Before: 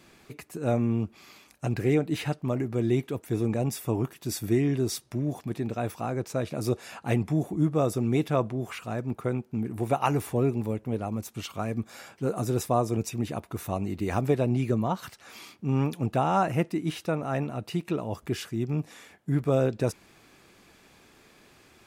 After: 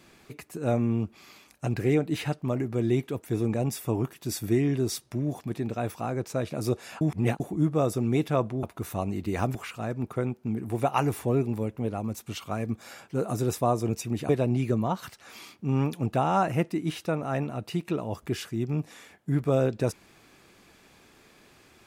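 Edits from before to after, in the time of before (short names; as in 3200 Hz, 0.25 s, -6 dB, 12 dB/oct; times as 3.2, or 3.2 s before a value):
7.01–7.4 reverse
13.37–14.29 move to 8.63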